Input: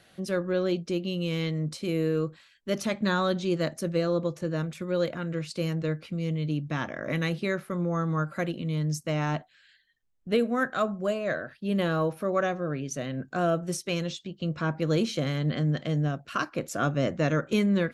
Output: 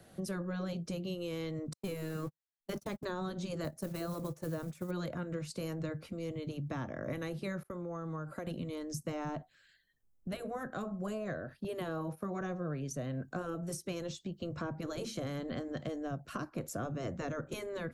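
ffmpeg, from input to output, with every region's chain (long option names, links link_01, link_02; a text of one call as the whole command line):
ffmpeg -i in.wav -filter_complex "[0:a]asettb=1/sr,asplit=3[link_01][link_02][link_03];[link_01]atrim=end=1.734[link_04];[link_02]atrim=start=1.73:end=3.05,asetpts=PTS-STARTPTS,afade=type=in:duration=0.004:curve=qsin,afade=type=out:start_time=1.316:duration=0.004:curve=qsin,aeval=exprs='val(0)+0.5*0.01*sgn(val(0))':channel_layout=same,agate=range=-55dB:threshold=-31dB:ratio=16:release=100:detection=peak[link_05];[link_03]atrim=start=3.046[link_06];[link_04][link_05]acrossfade=duration=0.004:curve1=hsin:curve2=qsin[link_07];[link_07][link_06]acrossfade=duration=0.004:curve1=qsin:curve2=hsin,asettb=1/sr,asplit=3[link_08][link_09][link_10];[link_08]atrim=end=3.644[link_11];[link_09]atrim=start=3.64:end=4.91,asetpts=PTS-STARTPTS,afade=type=in:duration=0.004:curve=qsin,afade=type=out:start_time=1.266:duration=0.004:curve=qsin,agate=range=-8dB:threshold=-35dB:ratio=16:release=100:detection=peak,acrusher=bits=6:mode=log:mix=0:aa=0.000001[link_12];[link_10]atrim=start=4.906[link_13];[link_11][link_12]acrossfade=duration=0.004:curve1=hsin:curve2=qsin[link_14];[link_14][link_13]acrossfade=duration=0.004:curve1=qsin:curve2=hsin,asettb=1/sr,asplit=3[link_15][link_16][link_17];[link_15]atrim=end=7.634[link_18];[link_16]atrim=start=7.63:end=8.47,asetpts=PTS-STARTPTS,afade=type=in:duration=0.004:curve=qsin,afade=type=out:start_time=0.836:duration=0.004:curve=qsin,agate=range=-33dB:threshold=-42dB:ratio=3:release=100:detection=peak,equalizer=frequency=180:width=2.5:gain=-9,acompressor=threshold=-35dB:ratio=5:attack=3.2:release=140:knee=1:detection=peak[link_19];[link_17]atrim=start=8.466[link_20];[link_18][link_19]acrossfade=duration=0.004:curve1=hsin:curve2=qsin[link_21];[link_21][link_20]acrossfade=duration=0.004:curve1=qsin:curve2=hsin,asettb=1/sr,asplit=3[link_22][link_23][link_24];[link_22]atrim=end=11.644[link_25];[link_23]atrim=start=11.64:end=12.41,asetpts=PTS-STARTPTS,afade=type=in:duration=0.004:curve=qsin,afade=type=out:start_time=0.766:duration=0.004:curve=qsin,agate=range=-11dB:threshold=-41dB:ratio=16:release=100:detection=peak,highpass=55[link_26];[link_24]atrim=start=12.406[link_27];[link_25][link_26]acrossfade=duration=0.004:curve1=hsin:curve2=qsin[link_28];[link_28][link_27]acrossfade=duration=0.004:curve1=qsin:curve2=hsin,afftfilt=real='re*lt(hypot(re,im),0.316)':imag='im*lt(hypot(re,im),0.316)':win_size=1024:overlap=0.75,equalizer=frequency=2800:width_type=o:width=2.5:gain=-13.5,acrossover=split=130|620[link_29][link_30][link_31];[link_29]acompressor=threshold=-47dB:ratio=4[link_32];[link_30]acompressor=threshold=-47dB:ratio=4[link_33];[link_31]acompressor=threshold=-47dB:ratio=4[link_34];[link_32][link_33][link_34]amix=inputs=3:normalize=0,volume=4.5dB" out.wav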